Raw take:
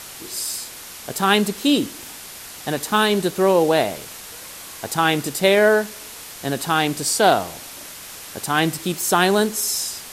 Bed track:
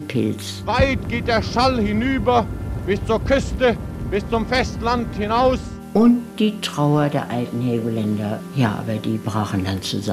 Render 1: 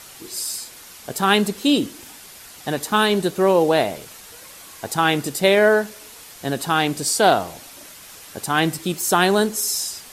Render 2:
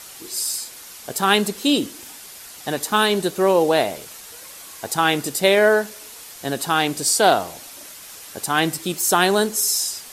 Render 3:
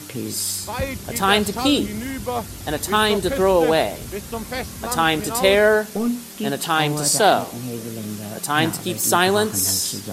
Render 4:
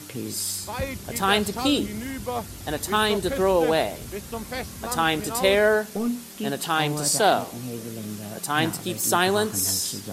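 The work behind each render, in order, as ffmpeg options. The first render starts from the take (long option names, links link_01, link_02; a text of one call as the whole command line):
ffmpeg -i in.wav -af "afftdn=noise_reduction=6:noise_floor=-38" out.wav
ffmpeg -i in.wav -af "bass=frequency=250:gain=-4,treble=frequency=4000:gain=3" out.wav
ffmpeg -i in.wav -i bed.wav -filter_complex "[1:a]volume=-9dB[link_01];[0:a][link_01]amix=inputs=2:normalize=0" out.wav
ffmpeg -i in.wav -af "volume=-4dB" out.wav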